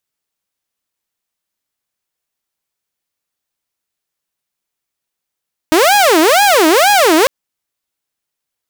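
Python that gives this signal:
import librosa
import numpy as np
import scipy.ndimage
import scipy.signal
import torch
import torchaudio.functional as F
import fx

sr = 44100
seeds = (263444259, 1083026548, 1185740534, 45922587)

y = fx.siren(sr, length_s=1.55, kind='wail', low_hz=310.0, high_hz=829.0, per_s=2.1, wave='saw', level_db=-4.5)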